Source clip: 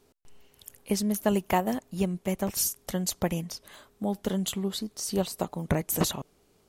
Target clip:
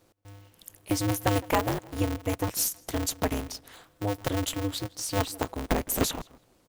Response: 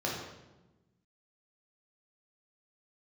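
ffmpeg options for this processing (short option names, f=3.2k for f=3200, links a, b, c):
-filter_complex "[0:a]asplit=2[a][b];[b]adelay=163,lowpass=f=2.7k:p=1,volume=-20.5dB,asplit=2[c][d];[d]adelay=163,lowpass=f=2.7k:p=1,volume=0.29[e];[a][c][e]amix=inputs=3:normalize=0,aeval=exprs='val(0)*sgn(sin(2*PI*100*n/s))':c=same"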